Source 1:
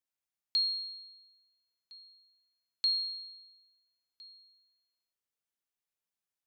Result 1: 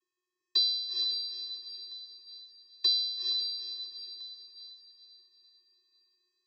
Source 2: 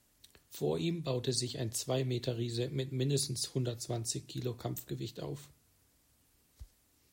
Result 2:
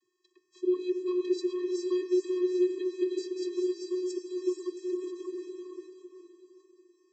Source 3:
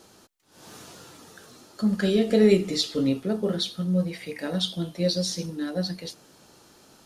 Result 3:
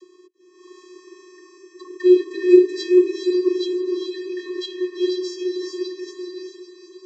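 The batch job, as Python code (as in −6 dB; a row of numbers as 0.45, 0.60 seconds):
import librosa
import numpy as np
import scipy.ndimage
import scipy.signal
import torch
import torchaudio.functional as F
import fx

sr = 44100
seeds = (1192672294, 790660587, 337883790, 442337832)

y = fx.vocoder(x, sr, bands=32, carrier='square', carrier_hz=363.0)
y = fx.echo_diffused(y, sr, ms=451, feedback_pct=42, wet_db=-3)
y = y * librosa.db_to_amplitude(5.5)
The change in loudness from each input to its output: +1.5, +4.5, +5.0 LU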